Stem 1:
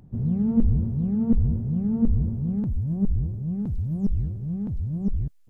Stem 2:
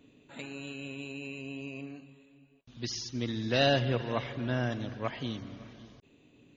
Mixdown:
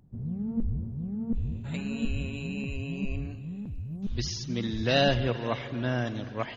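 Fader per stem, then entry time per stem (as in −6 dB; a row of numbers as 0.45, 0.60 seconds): −9.5, +2.0 decibels; 0.00, 1.35 seconds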